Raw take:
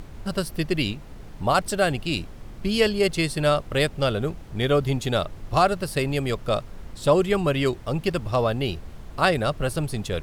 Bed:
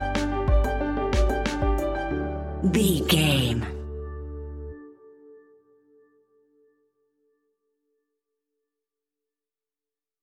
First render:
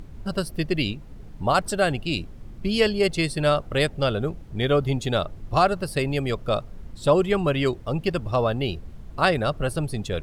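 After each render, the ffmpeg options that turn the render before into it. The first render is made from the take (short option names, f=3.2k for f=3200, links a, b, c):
-af "afftdn=nr=8:nf=-41"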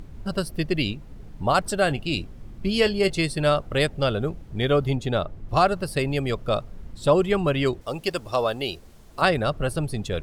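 -filter_complex "[0:a]asettb=1/sr,asplit=3[a][b][c];[a]atrim=end=1.844[d];[b]atrim=start=1.84:end=3.19,asetpts=PTS-STARTPTS,afade=t=in:d=0.004:c=qsin,afade=t=out:st=1.346:d=0.004:c=qsin,asplit=2[e][f];[f]adelay=21,volume=-14dB[g];[e][g]amix=inputs=2:normalize=0,atrim=end_sample=59535[h];[c]atrim=start=3.186[i];[d][h]acrossfade=d=0.004:c1=hsin:c2=qsin[j];[j][i]acrossfade=d=0.004:c1=qsin:c2=hsin,asettb=1/sr,asplit=3[k][l][m];[k]atrim=end=4.954[n];[l]atrim=start=4.95:end=5.49,asetpts=PTS-STARTPTS,afade=t=in:d=0.004:c=qsin,afade=t=out:st=0.536:d=0.004:c=qsin,highshelf=f=3k:g=-8[o];[m]atrim=start=5.486[p];[n][o]acrossfade=d=0.004:c1=hsin:c2=qsin[q];[q][p]acrossfade=d=0.004:c1=qsin:c2=hsin,asettb=1/sr,asplit=3[r][s][t];[r]atrim=end=7.814[u];[s]atrim=start=7.81:end=9.22,asetpts=PTS-STARTPTS,afade=t=in:d=0.004:c=qsin,afade=t=out:st=1.406:d=0.004:c=qsin,bass=f=250:g=-11,treble=f=4k:g=9[v];[t]atrim=start=9.216[w];[u][v]acrossfade=d=0.004:c1=hsin:c2=qsin[x];[x][w]acrossfade=d=0.004:c1=qsin:c2=hsin"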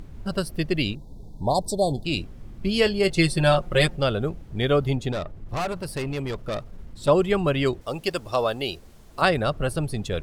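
-filter_complex "[0:a]asettb=1/sr,asplit=3[a][b][c];[a]atrim=end=0.954[d];[b]atrim=start=0.95:end=2.05,asetpts=PTS-STARTPTS,afade=t=in:d=0.004:c=qsin,afade=t=out:st=1.096:d=0.004:c=qsin,asuperstop=centerf=1900:order=20:qfactor=0.76[e];[c]atrim=start=2.046[f];[d][e]acrossfade=d=0.004:c1=hsin:c2=qsin[g];[g][f]acrossfade=d=0.004:c1=qsin:c2=hsin,asettb=1/sr,asplit=3[h][i][j];[h]atrim=end=3.174[k];[i]atrim=start=3.17:end=3.96,asetpts=PTS-STARTPTS,afade=t=in:d=0.004:c=qsin,afade=t=out:st=0.786:d=0.004:c=qsin,aecho=1:1:5.6:0.93,atrim=end_sample=34839[l];[j]atrim=start=3.956[m];[k][l]acrossfade=d=0.004:c1=hsin:c2=qsin[n];[n][m]acrossfade=d=0.004:c1=qsin:c2=hsin,asettb=1/sr,asplit=3[o][p][q];[o]atrim=end=5.124[r];[p]atrim=start=5.12:end=7.08,asetpts=PTS-STARTPTS,afade=t=in:d=0.004:c=qsin,afade=t=out:st=1.956:d=0.004:c=qsin,aeval=exprs='(tanh(15.8*val(0)+0.3)-tanh(0.3))/15.8':c=same[s];[q]atrim=start=7.076[t];[r][s]acrossfade=d=0.004:c1=hsin:c2=qsin[u];[u][t]acrossfade=d=0.004:c1=qsin:c2=hsin"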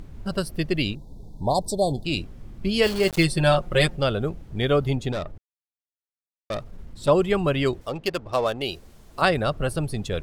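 -filter_complex "[0:a]asplit=3[a][b][c];[a]afade=t=out:st=2.82:d=0.02[d];[b]aeval=exprs='val(0)*gte(abs(val(0)),0.0355)':c=same,afade=t=in:st=2.82:d=0.02,afade=t=out:st=3.23:d=0.02[e];[c]afade=t=in:st=3.23:d=0.02[f];[d][e][f]amix=inputs=3:normalize=0,asettb=1/sr,asplit=3[g][h][i];[g]atrim=end=7.894[j];[h]atrim=start=7.89:end=8.62,asetpts=PTS-STARTPTS,afade=t=in:d=0.004:c=qsin,afade=t=out:st=0.726:d=0.004:c=qsin,adynamicsmooth=sensitivity=7:basefreq=1.7k[k];[i]atrim=start=8.616[l];[j][k]acrossfade=d=0.004:c1=hsin:c2=qsin[m];[m][l]acrossfade=d=0.004:c1=qsin:c2=hsin,asplit=3[n][o][p];[n]atrim=end=5.38,asetpts=PTS-STARTPTS,afade=t=out:st=5.376:d=0.004:c=hsin[q];[o]atrim=start=5.38:end=6.5,asetpts=PTS-STARTPTS,volume=0[r];[p]atrim=start=6.5,asetpts=PTS-STARTPTS,afade=t=in:d=0.004:c=hsin[s];[q][r][s]concat=n=3:v=0:a=1"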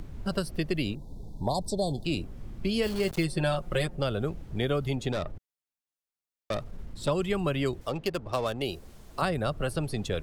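-filter_complex "[0:a]acrossover=split=240|1400|7300[a][b][c][d];[a]acompressor=threshold=-31dB:ratio=4[e];[b]acompressor=threshold=-29dB:ratio=4[f];[c]acompressor=threshold=-37dB:ratio=4[g];[d]acompressor=threshold=-47dB:ratio=4[h];[e][f][g][h]amix=inputs=4:normalize=0"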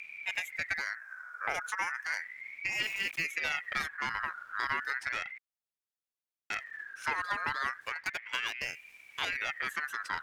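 -af "aeval=exprs='(tanh(10*val(0)+0.7)-tanh(0.7))/10':c=same,aeval=exprs='val(0)*sin(2*PI*1900*n/s+1900*0.25/0.34*sin(2*PI*0.34*n/s))':c=same"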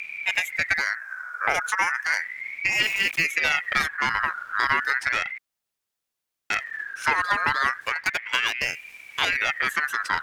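-af "volume=10.5dB"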